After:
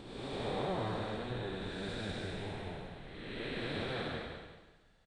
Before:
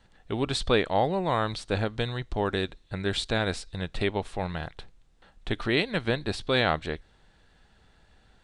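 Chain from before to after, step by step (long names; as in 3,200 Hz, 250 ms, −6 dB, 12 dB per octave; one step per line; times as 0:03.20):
spectrum smeared in time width 776 ms
repeating echo 320 ms, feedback 28%, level −6.5 dB
time stretch by phase vocoder 0.6×
level −3 dB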